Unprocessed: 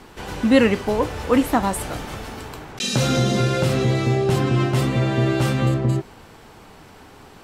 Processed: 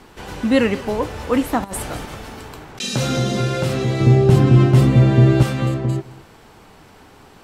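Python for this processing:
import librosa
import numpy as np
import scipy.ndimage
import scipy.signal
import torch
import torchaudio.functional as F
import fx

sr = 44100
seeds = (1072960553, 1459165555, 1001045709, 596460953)

p1 = fx.over_compress(x, sr, threshold_db=-26.0, ratio=-0.5, at=(1.64, 2.06))
p2 = fx.low_shelf(p1, sr, hz=380.0, db=11.0, at=(4.0, 5.43))
p3 = p2 + fx.echo_single(p2, sr, ms=215, db=-20.5, dry=0)
y = F.gain(torch.from_numpy(p3), -1.0).numpy()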